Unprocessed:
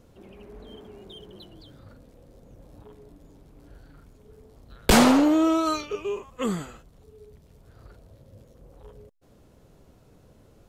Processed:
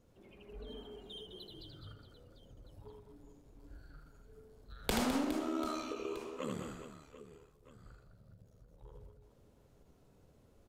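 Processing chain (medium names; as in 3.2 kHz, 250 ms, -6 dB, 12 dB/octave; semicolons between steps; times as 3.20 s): spectral noise reduction 9 dB; compression 4:1, threshold -32 dBFS, peak gain reduction 16 dB; 5.23–8.94 s: AM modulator 74 Hz, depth 90%; reverse bouncing-ball echo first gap 80 ms, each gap 1.6×, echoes 5; endings held to a fixed fall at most 140 dB/s; trim -3 dB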